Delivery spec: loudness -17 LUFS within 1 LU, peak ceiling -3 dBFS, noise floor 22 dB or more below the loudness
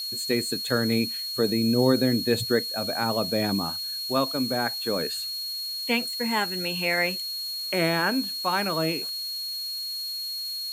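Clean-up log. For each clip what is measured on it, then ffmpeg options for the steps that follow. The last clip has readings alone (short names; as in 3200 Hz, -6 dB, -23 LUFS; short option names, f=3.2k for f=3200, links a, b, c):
steady tone 4300 Hz; tone level -30 dBFS; noise floor -33 dBFS; noise floor target -48 dBFS; loudness -25.5 LUFS; peak -8.5 dBFS; loudness target -17.0 LUFS
-> -af "bandreject=f=4.3k:w=30"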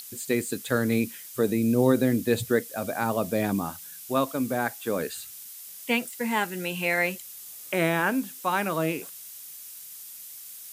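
steady tone none; noise floor -43 dBFS; noise floor target -49 dBFS
-> -af "afftdn=nr=6:nf=-43"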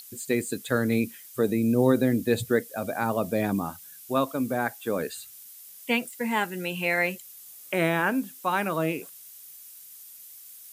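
noise floor -47 dBFS; noise floor target -49 dBFS
-> -af "afftdn=nr=6:nf=-47"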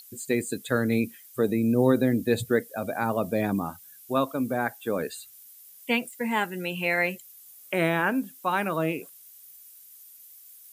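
noise floor -51 dBFS; loudness -27.0 LUFS; peak -9.5 dBFS; loudness target -17.0 LUFS
-> -af "volume=10dB,alimiter=limit=-3dB:level=0:latency=1"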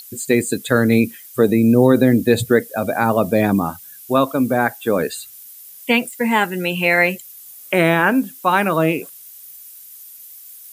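loudness -17.5 LUFS; peak -3.0 dBFS; noise floor -41 dBFS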